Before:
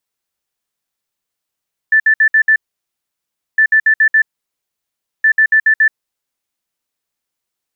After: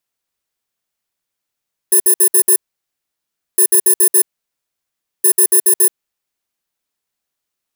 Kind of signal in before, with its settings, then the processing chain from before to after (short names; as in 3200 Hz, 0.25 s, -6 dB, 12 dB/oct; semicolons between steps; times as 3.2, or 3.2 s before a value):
beep pattern sine 1760 Hz, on 0.08 s, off 0.06 s, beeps 5, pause 1.02 s, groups 3, -6.5 dBFS
FFT order left unsorted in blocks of 32 samples